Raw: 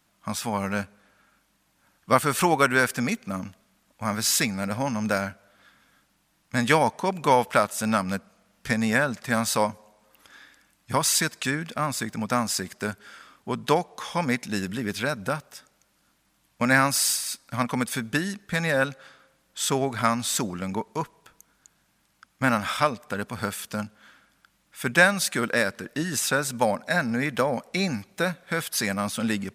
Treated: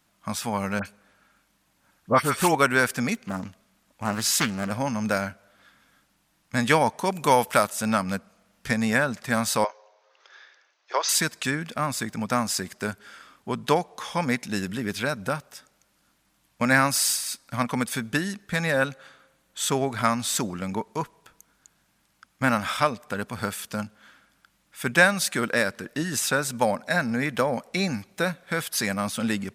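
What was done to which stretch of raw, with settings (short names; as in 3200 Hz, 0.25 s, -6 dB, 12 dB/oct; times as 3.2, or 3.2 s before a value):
0.79–2.55 dispersion highs, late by 65 ms, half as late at 2000 Hz
3.15–4.71 Doppler distortion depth 0.37 ms
6.99–7.7 high shelf 7100 Hz +11.5 dB
9.64–11.09 Chebyshev band-pass 370–6200 Hz, order 5
18.73–19.69 notch 5100 Hz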